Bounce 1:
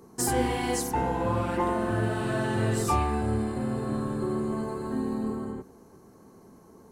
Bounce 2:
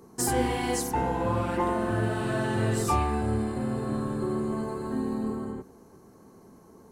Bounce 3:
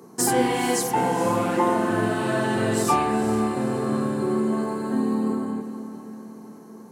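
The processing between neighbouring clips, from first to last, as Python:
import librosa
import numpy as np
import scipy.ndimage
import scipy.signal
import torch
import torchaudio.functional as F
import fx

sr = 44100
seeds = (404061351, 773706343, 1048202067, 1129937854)

y1 = x
y2 = scipy.signal.sosfilt(scipy.signal.butter(4, 140.0, 'highpass', fs=sr, output='sos'), y1)
y2 = fx.echo_diffused(y2, sr, ms=451, feedback_pct=48, wet_db=-11.5)
y2 = y2 * librosa.db_to_amplitude(5.5)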